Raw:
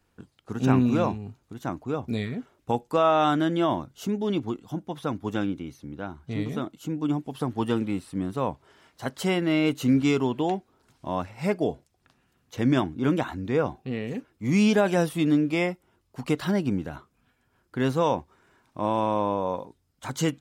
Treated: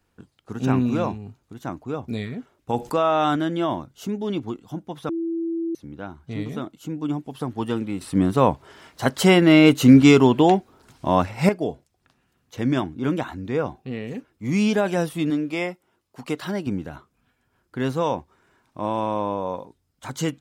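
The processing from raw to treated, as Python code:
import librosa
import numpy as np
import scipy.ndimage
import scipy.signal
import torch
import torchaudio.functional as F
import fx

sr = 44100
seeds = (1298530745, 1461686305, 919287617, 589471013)

y = fx.env_flatten(x, sr, amount_pct=50, at=(2.73, 3.36))
y = fx.highpass(y, sr, hz=240.0, slope=6, at=(15.3, 16.67))
y = fx.edit(y, sr, fx.bleep(start_s=5.09, length_s=0.66, hz=332.0, db=-23.0),
    fx.clip_gain(start_s=8.01, length_s=3.48, db=10.0), tone=tone)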